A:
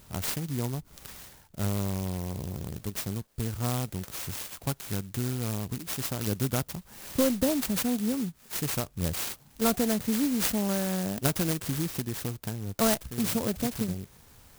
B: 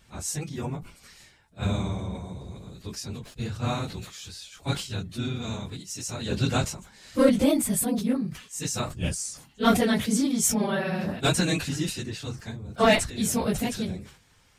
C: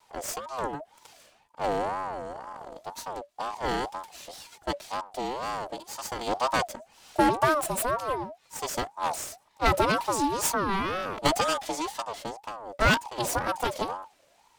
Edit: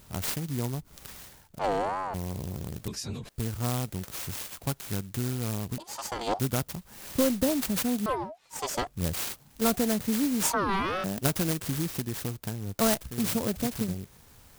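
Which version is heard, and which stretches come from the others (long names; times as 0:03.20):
A
0:01.59–0:02.14: punch in from C
0:02.88–0:03.29: punch in from B
0:05.78–0:06.39: punch in from C
0:08.06–0:08.87: punch in from C
0:10.43–0:11.04: punch in from C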